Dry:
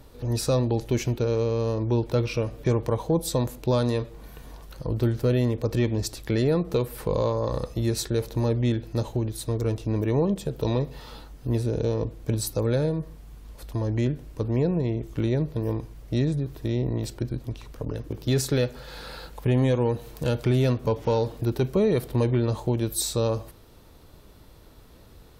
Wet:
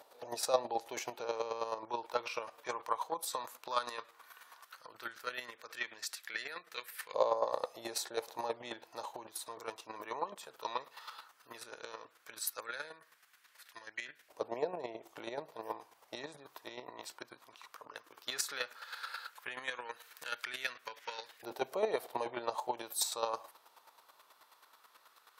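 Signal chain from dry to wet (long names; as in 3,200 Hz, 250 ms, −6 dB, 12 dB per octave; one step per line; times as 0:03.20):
square-wave tremolo 9.3 Hz, depth 60%, duty 20%
auto-filter high-pass saw up 0.14 Hz 700–1,800 Hz
level −1.5 dB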